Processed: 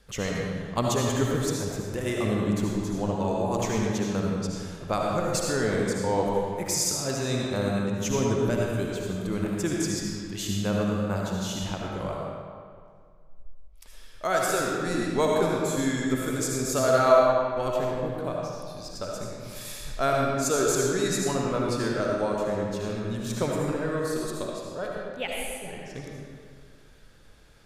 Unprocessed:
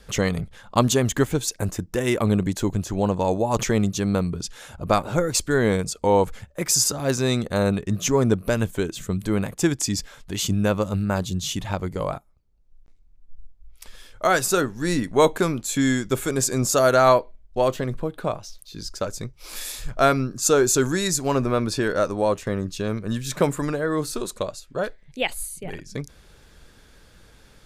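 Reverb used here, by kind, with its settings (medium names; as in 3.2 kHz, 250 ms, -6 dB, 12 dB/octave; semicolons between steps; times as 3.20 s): algorithmic reverb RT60 2 s, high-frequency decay 0.7×, pre-delay 35 ms, DRR -2.5 dB; trim -8.5 dB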